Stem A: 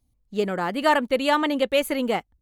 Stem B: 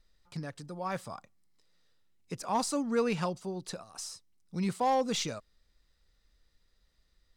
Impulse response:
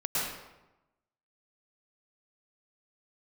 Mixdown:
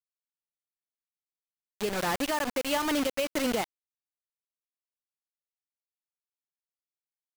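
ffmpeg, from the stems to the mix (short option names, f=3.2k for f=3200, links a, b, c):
-filter_complex "[0:a]lowpass=f=9.2k:w=0.5412,lowpass=f=9.2k:w=1.3066,alimiter=limit=-13dB:level=0:latency=1:release=234,adelay=1450,volume=-2.5dB[a];[1:a]highpass=1.3k,acompressor=threshold=-47dB:ratio=4,volume=-6dB[b];[a][b]amix=inputs=2:normalize=0,acrusher=bits=4:mix=0:aa=0.000001,acompressor=mode=upward:threshold=-33dB:ratio=2.5,alimiter=limit=-18.5dB:level=0:latency=1:release=198"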